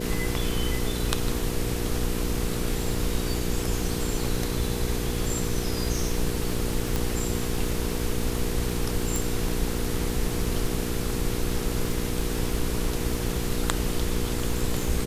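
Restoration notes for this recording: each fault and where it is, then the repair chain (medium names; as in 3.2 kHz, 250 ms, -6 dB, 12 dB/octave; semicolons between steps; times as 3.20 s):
crackle 35 per s -31 dBFS
hum 60 Hz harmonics 8 -31 dBFS
6.96 s: pop
9.16 s: pop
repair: de-click; de-hum 60 Hz, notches 8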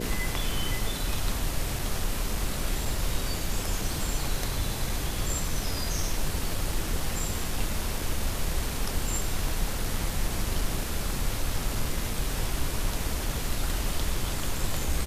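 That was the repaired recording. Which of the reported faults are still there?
nothing left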